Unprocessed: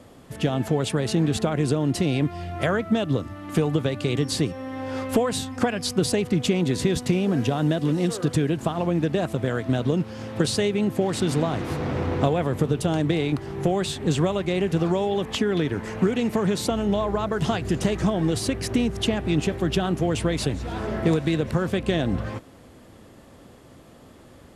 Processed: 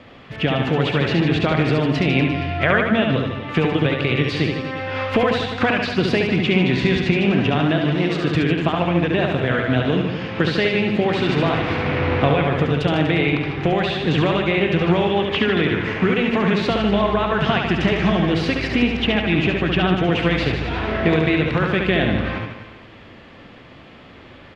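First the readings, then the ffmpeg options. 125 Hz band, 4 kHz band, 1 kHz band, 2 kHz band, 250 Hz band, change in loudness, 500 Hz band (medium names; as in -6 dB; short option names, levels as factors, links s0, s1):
+4.0 dB, +6.5 dB, +7.0 dB, +12.5 dB, +4.0 dB, +5.0 dB, +4.5 dB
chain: -filter_complex "[0:a]firequalizer=gain_entry='entry(450,0);entry(2400,12);entry(8800,-24)':delay=0.05:min_phase=1,acrossover=split=2700[s0][s1];[s1]acompressor=threshold=0.0224:ratio=4:attack=1:release=60[s2];[s0][s2]amix=inputs=2:normalize=0,aecho=1:1:70|150.5|243.1|349.5|472:0.631|0.398|0.251|0.158|0.1,volume=1.26"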